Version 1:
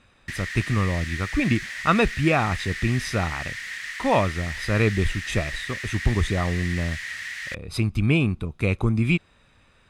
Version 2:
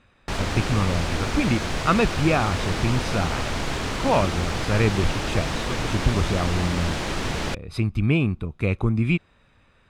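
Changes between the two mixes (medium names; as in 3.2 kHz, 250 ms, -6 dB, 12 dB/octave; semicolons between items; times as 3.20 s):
background: remove ladder high-pass 1.8 kHz, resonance 85%; master: add treble shelf 4.3 kHz -9 dB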